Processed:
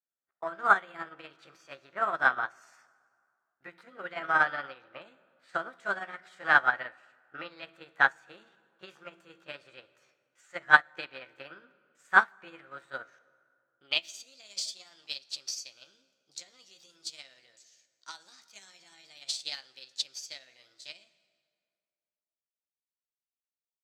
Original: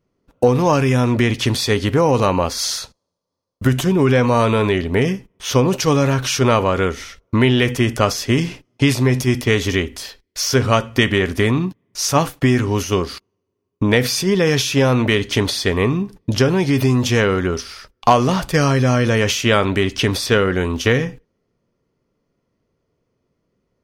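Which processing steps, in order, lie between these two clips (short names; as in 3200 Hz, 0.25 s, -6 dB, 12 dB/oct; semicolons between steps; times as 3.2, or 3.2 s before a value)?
delay-line pitch shifter +5 st; band-pass sweep 1500 Hz -> 5000 Hz, 13.24–14.32; plate-style reverb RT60 2.4 s, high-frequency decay 0.6×, DRR 11 dB; upward expander 2.5:1, over -34 dBFS; gain +5 dB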